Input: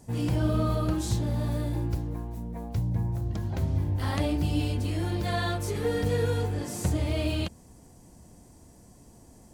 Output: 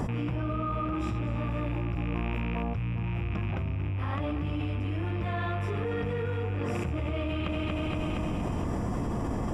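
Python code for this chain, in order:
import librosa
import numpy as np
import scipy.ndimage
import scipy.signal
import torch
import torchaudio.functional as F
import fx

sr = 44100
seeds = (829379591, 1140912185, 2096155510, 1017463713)

y = fx.rattle_buzz(x, sr, strikes_db=-36.0, level_db=-31.0)
y = scipy.signal.savgol_filter(y, 25, 4, mode='constant')
y = fx.peak_eq(y, sr, hz=1200.0, db=10.5, octaves=0.26)
y = fx.echo_feedback(y, sr, ms=234, feedback_pct=50, wet_db=-12.0)
y = fx.env_flatten(y, sr, amount_pct=100)
y = y * 10.0 ** (-8.5 / 20.0)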